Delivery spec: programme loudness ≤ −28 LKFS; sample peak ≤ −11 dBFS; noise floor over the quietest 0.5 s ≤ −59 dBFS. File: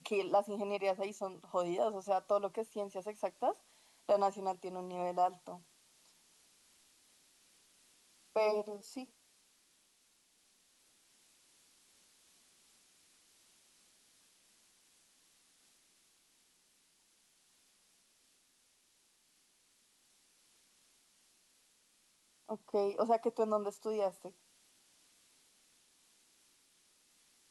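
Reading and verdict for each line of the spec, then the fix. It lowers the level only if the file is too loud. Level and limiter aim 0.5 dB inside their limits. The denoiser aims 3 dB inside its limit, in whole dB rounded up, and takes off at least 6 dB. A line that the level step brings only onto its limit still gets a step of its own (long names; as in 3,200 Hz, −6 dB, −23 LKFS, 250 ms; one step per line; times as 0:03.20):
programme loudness −36.5 LKFS: in spec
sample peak −19.0 dBFS: in spec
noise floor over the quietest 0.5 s −72 dBFS: in spec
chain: no processing needed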